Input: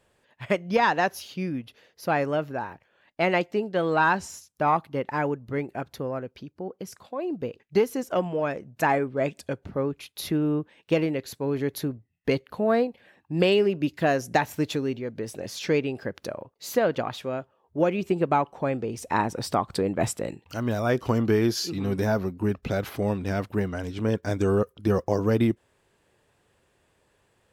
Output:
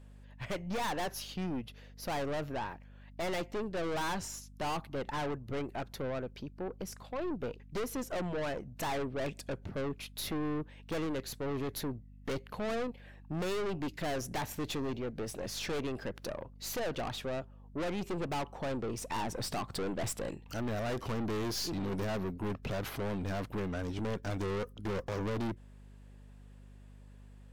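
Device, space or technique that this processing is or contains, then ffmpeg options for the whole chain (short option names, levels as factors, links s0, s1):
valve amplifier with mains hum: -af "aeval=exprs='(tanh(44.7*val(0)+0.45)-tanh(0.45))/44.7':c=same,aeval=exprs='val(0)+0.00251*(sin(2*PI*50*n/s)+sin(2*PI*2*50*n/s)/2+sin(2*PI*3*50*n/s)/3+sin(2*PI*4*50*n/s)/4+sin(2*PI*5*50*n/s)/5)':c=same"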